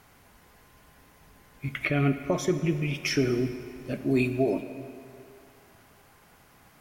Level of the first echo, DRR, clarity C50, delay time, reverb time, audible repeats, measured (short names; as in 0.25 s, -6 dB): none, 9.5 dB, 10.0 dB, none, 2.6 s, none